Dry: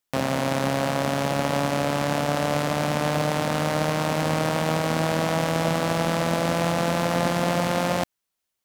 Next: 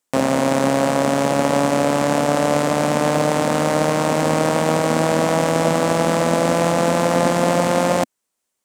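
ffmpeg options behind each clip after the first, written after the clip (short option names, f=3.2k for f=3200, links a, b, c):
-af "equalizer=f=250:t=o:w=1:g=8,equalizer=f=500:t=o:w=1:g=7,equalizer=f=1k:t=o:w=1:g=5,equalizer=f=2k:t=o:w=1:g=3,equalizer=f=8k:t=o:w=1:g=10,volume=-1dB"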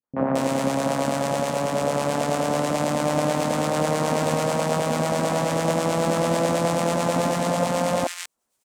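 -filter_complex "[0:a]dynaudnorm=f=110:g=3:m=12.5dB,acrossover=split=910[a][b];[a]aeval=exprs='val(0)*(1-0.5/2+0.5/2*cos(2*PI*9.2*n/s))':c=same[c];[b]aeval=exprs='val(0)*(1-0.5/2-0.5/2*cos(2*PI*9.2*n/s))':c=same[d];[c][d]amix=inputs=2:normalize=0,acrossover=split=350|1700[e][f][g];[f]adelay=30[h];[g]adelay=220[i];[e][h][i]amix=inputs=3:normalize=0,volume=-4.5dB"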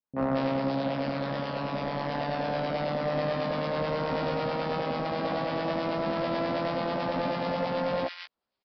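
-filter_complex "[0:a]aresample=11025,asoftclip=type=hard:threshold=-18dB,aresample=44100,asplit=2[a][b];[b]adelay=15,volume=-6dB[c];[a][c]amix=inputs=2:normalize=0,volume=-6.5dB"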